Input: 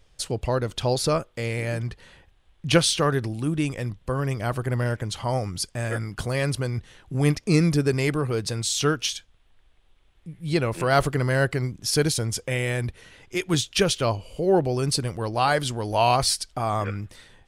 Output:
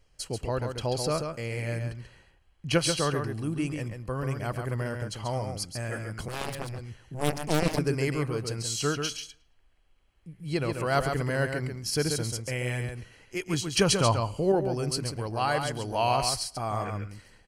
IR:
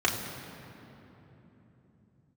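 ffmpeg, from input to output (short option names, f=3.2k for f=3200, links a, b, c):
-filter_complex "[0:a]asuperstop=centerf=3600:order=12:qfactor=7.9,asplit=2[a][b];[b]aecho=0:1:137:0.501[c];[a][c]amix=inputs=2:normalize=0,asettb=1/sr,asplit=3[d][e][f];[d]atrim=end=6.284[g];[e]atrim=start=6.28:end=7.79,asetpts=PTS-STARTPTS,afade=t=in:d=0.004:c=qsin,afade=t=out:st=1.506:d=0.004:c=qsin,aeval=exprs='0.473*(cos(1*acos(clip(val(0)/0.473,-1,1)))-cos(1*PI/2))+0.133*(cos(7*acos(clip(val(0)/0.473,-1,1)))-cos(7*PI/2))':c=same[h];[f]atrim=start=7.786[i];[g][h]acrossfade=d=0.004:c1=hsin:c2=qsin[j];[j][i]acrossfade=d=0.004:c1=qsin:c2=hsin,asettb=1/sr,asplit=3[k][l][m];[k]atrim=end=13.774[n];[l]atrim=start=13.77:end=14.52,asetpts=PTS-STARTPTS,afade=t=in:d=0.004:c=qsin,afade=t=out:st=0.746:d=0.004:c=qsin,equalizer=f=125:t=o:w=1:g=7,equalizer=f=250:t=o:w=1:g=4,equalizer=f=1k:t=o:w=1:g=9,equalizer=f=4k:t=o:w=1:g=4,equalizer=f=8k:t=o:w=1:g=7[o];[m]atrim=start=14.516[p];[n][o]acrossfade=d=0.004:c1=hsin:c2=qsin[q];[q][p]acrossfade=d=0.004:c1=qsin:c2=hsin,asplit=2[r][s];[s]adelay=110,lowpass=f=4.5k:p=1,volume=-23dB,asplit=2[t][u];[u]adelay=110,lowpass=f=4.5k:p=1,volume=0.38,asplit=2[v][w];[w]adelay=110,lowpass=f=4.5k:p=1,volume=0.38[x];[t][v][x]amix=inputs=3:normalize=0[y];[r][y]amix=inputs=2:normalize=0,volume=-6dB"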